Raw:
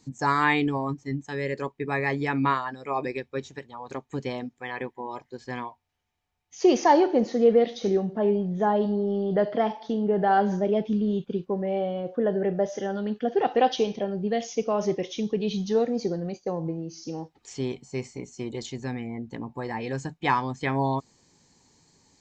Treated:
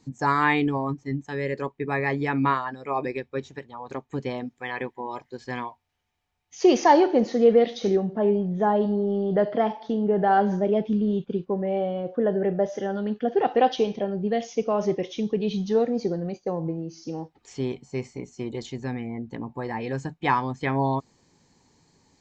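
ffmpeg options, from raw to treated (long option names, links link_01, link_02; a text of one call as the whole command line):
ffmpeg -i in.wav -filter_complex "[0:a]asettb=1/sr,asplit=3[link_01][link_02][link_03];[link_01]atrim=end=4.474[link_04];[link_02]atrim=start=4.47:end=7.96,asetpts=PTS-STARTPTS,afade=type=in:duration=0.004:curve=qsin,afade=type=out:start_time=3.486:duration=0.004:curve=qsin,highshelf=frequency=2200:gain=6[link_05];[link_03]atrim=start=7.956[link_06];[link_04][link_05]acrossfade=duration=0.004:curve1=hsin:curve2=qsin[link_07];[link_07][link_06]acrossfade=duration=0.004:curve1=qsin:curve2=hsin,highshelf=frequency=4700:gain=-9,volume=1.5dB" out.wav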